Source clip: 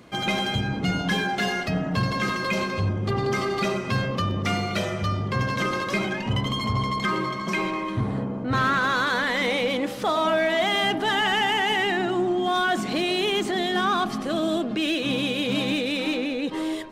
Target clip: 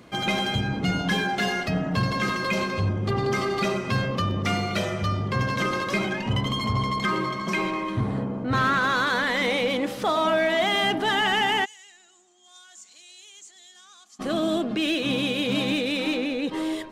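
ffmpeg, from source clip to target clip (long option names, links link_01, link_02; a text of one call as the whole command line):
ffmpeg -i in.wav -filter_complex "[0:a]asplit=3[link_01][link_02][link_03];[link_01]afade=type=out:start_time=11.64:duration=0.02[link_04];[link_02]bandpass=frequency=7000:width_type=q:width=6.1:csg=0,afade=type=in:start_time=11.64:duration=0.02,afade=type=out:start_time=14.19:duration=0.02[link_05];[link_03]afade=type=in:start_time=14.19:duration=0.02[link_06];[link_04][link_05][link_06]amix=inputs=3:normalize=0" out.wav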